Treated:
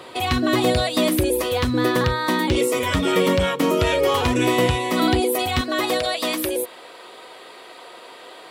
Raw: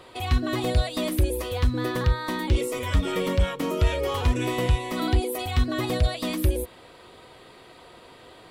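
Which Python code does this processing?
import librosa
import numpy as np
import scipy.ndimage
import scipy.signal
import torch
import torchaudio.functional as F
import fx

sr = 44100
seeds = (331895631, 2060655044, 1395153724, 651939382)

y = fx.highpass(x, sr, hz=fx.steps((0.0, 150.0), (5.61, 420.0)), slope=12)
y = F.gain(torch.from_numpy(y), 8.5).numpy()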